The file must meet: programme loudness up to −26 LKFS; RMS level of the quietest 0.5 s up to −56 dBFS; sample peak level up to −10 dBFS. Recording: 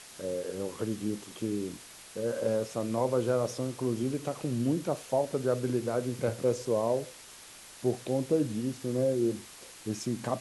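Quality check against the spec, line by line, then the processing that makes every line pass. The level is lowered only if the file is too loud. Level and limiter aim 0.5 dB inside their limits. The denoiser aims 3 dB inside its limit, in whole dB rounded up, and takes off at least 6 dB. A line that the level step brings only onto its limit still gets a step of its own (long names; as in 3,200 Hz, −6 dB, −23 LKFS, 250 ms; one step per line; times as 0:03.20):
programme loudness −31.5 LKFS: in spec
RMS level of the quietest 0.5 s −50 dBFS: out of spec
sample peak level −15.5 dBFS: in spec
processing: broadband denoise 9 dB, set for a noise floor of −50 dBFS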